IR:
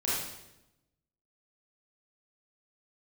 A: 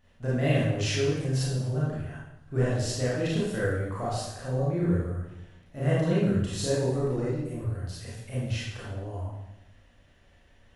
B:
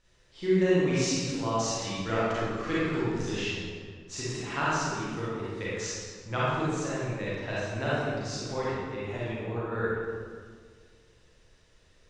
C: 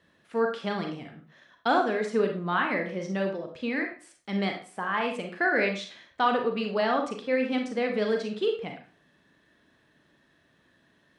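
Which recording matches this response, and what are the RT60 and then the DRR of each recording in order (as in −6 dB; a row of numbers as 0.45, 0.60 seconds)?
A; 0.90, 1.8, 0.40 seconds; −8.5, −9.0, 3.0 decibels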